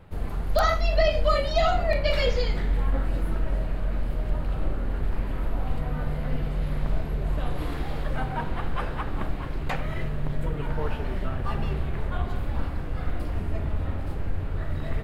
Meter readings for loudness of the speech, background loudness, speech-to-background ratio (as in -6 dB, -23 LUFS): -26.0 LUFS, -31.0 LUFS, 5.0 dB